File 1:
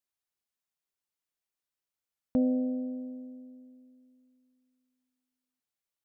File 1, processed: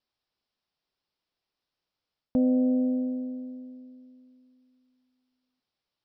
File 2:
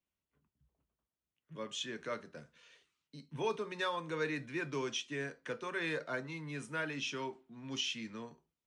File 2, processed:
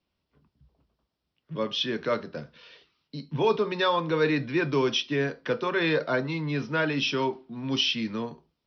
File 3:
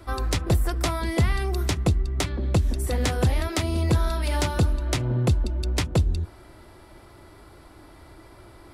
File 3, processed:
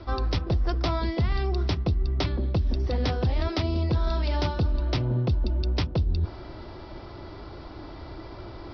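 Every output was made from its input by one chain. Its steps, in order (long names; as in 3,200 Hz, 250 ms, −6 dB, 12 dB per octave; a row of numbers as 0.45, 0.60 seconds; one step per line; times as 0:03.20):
Butterworth low-pass 5,500 Hz 96 dB per octave
parametric band 1,900 Hz −5.5 dB 1.2 octaves
reversed playback
downward compressor 4 to 1, threshold −32 dBFS
reversed playback
loudness normalisation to −27 LKFS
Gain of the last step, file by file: +10.5, +14.0, +8.0 decibels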